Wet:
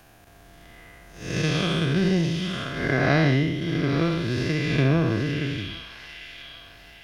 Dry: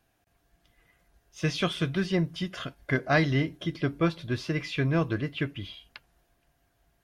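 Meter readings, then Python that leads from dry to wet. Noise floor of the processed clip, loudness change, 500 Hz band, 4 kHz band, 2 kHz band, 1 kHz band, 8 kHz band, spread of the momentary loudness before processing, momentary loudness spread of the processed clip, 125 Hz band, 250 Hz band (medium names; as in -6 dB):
-51 dBFS, +5.0 dB, +4.5 dB, +5.5 dB, +4.5 dB, +3.0 dB, +6.0 dB, 10 LU, 19 LU, +6.0 dB, +5.5 dB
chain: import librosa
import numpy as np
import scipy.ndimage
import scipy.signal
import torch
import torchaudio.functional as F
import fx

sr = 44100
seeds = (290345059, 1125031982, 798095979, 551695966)

y = fx.spec_blur(x, sr, span_ms=239.0)
y = fx.transient(y, sr, attack_db=8, sustain_db=-1)
y = fx.echo_wet_highpass(y, sr, ms=798, feedback_pct=31, hz=2600.0, wet_db=-8)
y = fx.band_squash(y, sr, depth_pct=40)
y = y * librosa.db_to_amplitude(8.5)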